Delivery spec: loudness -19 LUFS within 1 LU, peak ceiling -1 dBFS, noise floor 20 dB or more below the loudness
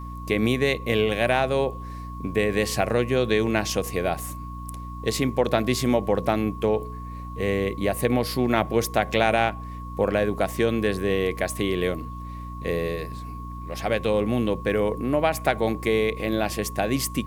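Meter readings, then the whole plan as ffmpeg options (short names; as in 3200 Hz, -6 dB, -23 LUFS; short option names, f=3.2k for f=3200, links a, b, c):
hum 60 Hz; harmonics up to 300 Hz; hum level -34 dBFS; steady tone 1100 Hz; tone level -39 dBFS; loudness -24.5 LUFS; peak -5.0 dBFS; loudness target -19.0 LUFS
-> -af "bandreject=f=60:t=h:w=4,bandreject=f=120:t=h:w=4,bandreject=f=180:t=h:w=4,bandreject=f=240:t=h:w=4,bandreject=f=300:t=h:w=4"
-af "bandreject=f=1.1k:w=30"
-af "volume=5.5dB,alimiter=limit=-1dB:level=0:latency=1"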